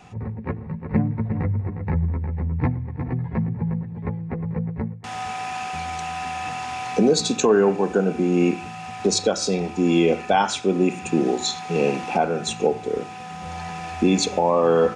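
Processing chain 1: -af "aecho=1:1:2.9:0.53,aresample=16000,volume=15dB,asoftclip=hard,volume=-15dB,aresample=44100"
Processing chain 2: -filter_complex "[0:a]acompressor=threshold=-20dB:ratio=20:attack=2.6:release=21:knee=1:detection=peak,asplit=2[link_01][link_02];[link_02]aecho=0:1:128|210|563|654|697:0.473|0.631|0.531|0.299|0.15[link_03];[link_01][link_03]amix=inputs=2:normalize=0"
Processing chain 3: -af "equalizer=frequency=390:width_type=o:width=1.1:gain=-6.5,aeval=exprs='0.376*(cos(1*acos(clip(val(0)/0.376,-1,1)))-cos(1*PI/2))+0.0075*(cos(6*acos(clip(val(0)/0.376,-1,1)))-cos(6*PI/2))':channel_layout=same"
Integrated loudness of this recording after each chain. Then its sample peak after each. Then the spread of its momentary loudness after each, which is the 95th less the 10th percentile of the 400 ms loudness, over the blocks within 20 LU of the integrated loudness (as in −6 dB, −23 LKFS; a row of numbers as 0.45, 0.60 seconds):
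−24.0, −23.5, −26.0 LKFS; −10.5, −8.5, −8.5 dBFS; 12, 7, 11 LU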